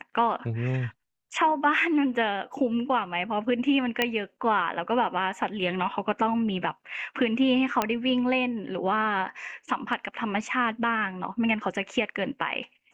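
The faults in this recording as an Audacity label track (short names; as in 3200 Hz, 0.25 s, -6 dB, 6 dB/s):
4.020000	4.020000	pop -9 dBFS
7.820000	7.820000	pop -9 dBFS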